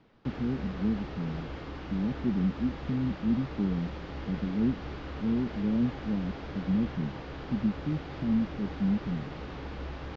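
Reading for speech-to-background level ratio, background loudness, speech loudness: 8.5 dB, -40.5 LUFS, -32.0 LUFS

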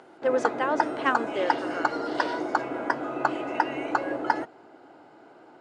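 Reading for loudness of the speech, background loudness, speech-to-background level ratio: -29.5 LUFS, -28.5 LUFS, -1.0 dB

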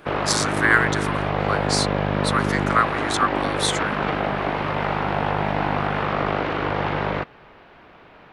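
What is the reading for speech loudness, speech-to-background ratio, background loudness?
-24.0 LUFS, -0.5 dB, -23.5 LUFS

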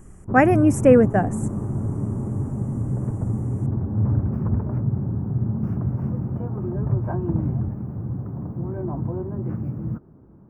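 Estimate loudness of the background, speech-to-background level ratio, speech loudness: -26.0 LUFS, 8.0 dB, -18.0 LUFS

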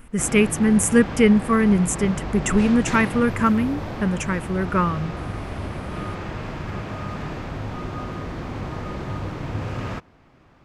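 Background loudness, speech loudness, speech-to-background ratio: -31.0 LUFS, -20.0 LUFS, 11.0 dB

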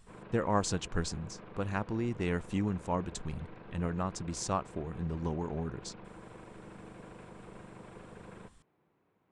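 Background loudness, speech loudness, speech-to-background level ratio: -50.5 LUFS, -35.5 LUFS, 15.0 dB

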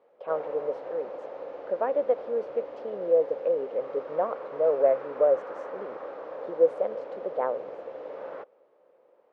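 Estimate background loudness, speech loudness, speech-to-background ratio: -39.0 LUFS, -28.0 LUFS, 11.0 dB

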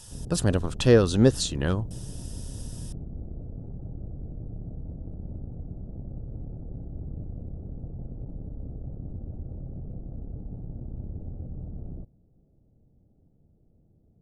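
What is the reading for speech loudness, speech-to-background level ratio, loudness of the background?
-23.5 LUFS, 16.5 dB, -40.0 LUFS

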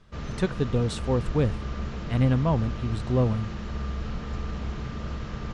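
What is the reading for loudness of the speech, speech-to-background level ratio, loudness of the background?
-26.5 LUFS, 8.0 dB, -34.5 LUFS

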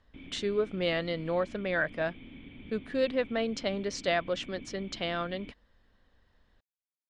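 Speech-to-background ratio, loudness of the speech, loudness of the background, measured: 17.0 dB, -32.0 LUFS, -49.0 LUFS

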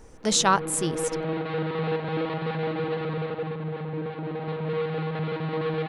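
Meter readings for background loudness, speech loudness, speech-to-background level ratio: -30.0 LUFS, -23.5 LUFS, 6.5 dB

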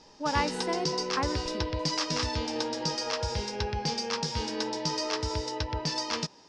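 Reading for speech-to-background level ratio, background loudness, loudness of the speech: -2.5 dB, -31.0 LUFS, -33.5 LUFS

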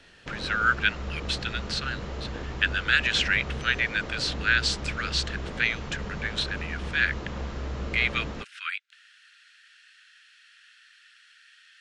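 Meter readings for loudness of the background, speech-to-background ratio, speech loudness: -36.0 LUFS, 9.0 dB, -27.0 LUFS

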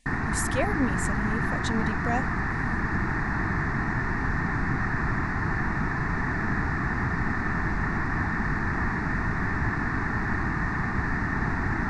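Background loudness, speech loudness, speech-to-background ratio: -27.5 LUFS, -31.5 LUFS, -4.0 dB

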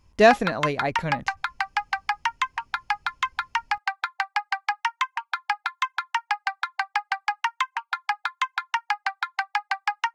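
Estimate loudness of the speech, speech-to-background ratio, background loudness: -23.0 LUFS, 5.0 dB, -28.0 LUFS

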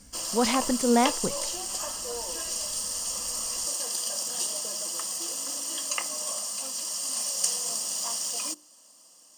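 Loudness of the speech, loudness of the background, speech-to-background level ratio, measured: -26.5 LUFS, -28.5 LUFS, 2.0 dB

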